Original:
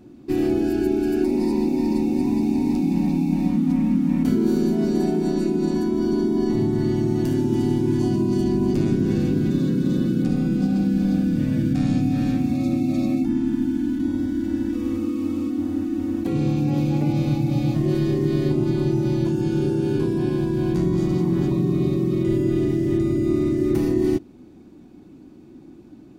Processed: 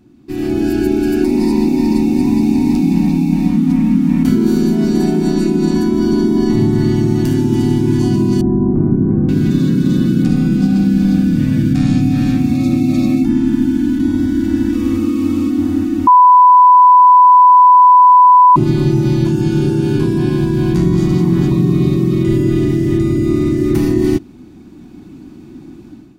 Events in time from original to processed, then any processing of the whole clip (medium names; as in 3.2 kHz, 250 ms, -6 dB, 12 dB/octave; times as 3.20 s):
8.41–9.29 s: low-pass 1.1 kHz 24 dB/octave
16.07–18.56 s: bleep 996 Hz -11 dBFS
whole clip: peaking EQ 520 Hz -9 dB 1 oct; level rider gain up to 12 dB